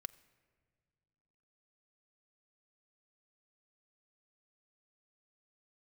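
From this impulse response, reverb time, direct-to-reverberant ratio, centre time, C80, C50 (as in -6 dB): not exponential, 13.5 dB, 3 ms, 20.5 dB, 19.5 dB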